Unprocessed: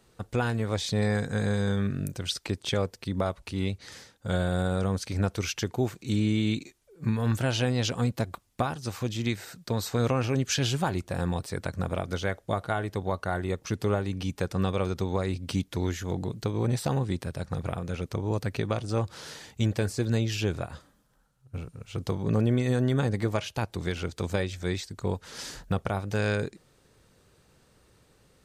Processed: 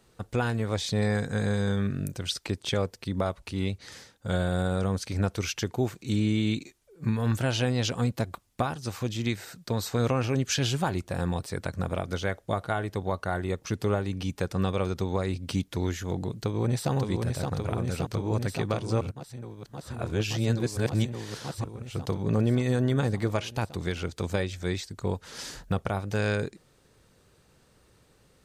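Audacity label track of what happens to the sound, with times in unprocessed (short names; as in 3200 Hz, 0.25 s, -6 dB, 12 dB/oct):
16.280000	16.920000	echo throw 0.57 s, feedback 85%, level -4 dB
19.010000	21.640000	reverse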